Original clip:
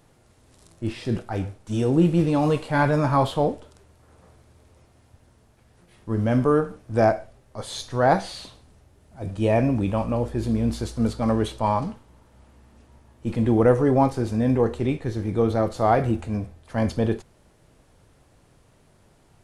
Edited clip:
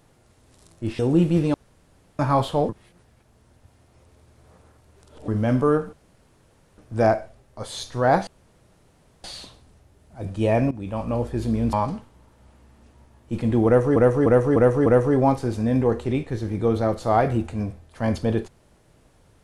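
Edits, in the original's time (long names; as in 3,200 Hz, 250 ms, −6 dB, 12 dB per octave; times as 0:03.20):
0:00.99–0:01.82: remove
0:02.37–0:03.02: fill with room tone
0:03.52–0:06.11: reverse
0:06.76: splice in room tone 0.85 s
0:08.25: splice in room tone 0.97 s
0:09.72–0:10.17: fade in, from −16.5 dB
0:10.74–0:11.67: remove
0:13.60–0:13.90: repeat, 5 plays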